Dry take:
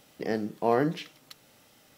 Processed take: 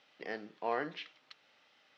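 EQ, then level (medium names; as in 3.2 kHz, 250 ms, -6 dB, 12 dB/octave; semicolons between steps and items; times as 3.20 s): band-pass filter 3.5 kHz, Q 0.53; distance through air 240 m; +1.0 dB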